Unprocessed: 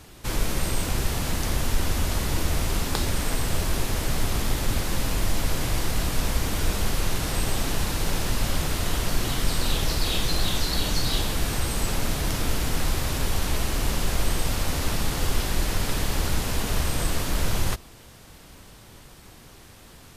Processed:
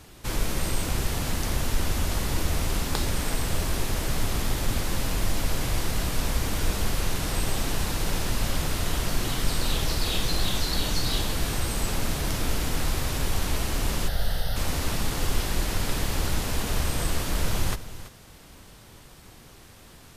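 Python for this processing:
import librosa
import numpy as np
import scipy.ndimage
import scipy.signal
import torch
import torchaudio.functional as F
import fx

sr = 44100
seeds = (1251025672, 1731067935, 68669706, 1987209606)

y = fx.fixed_phaser(x, sr, hz=1600.0, stages=8, at=(14.07, 14.55), fade=0.02)
y = y + 10.0 ** (-14.5 / 20.0) * np.pad(y, (int(332 * sr / 1000.0), 0))[:len(y)]
y = F.gain(torch.from_numpy(y), -1.5).numpy()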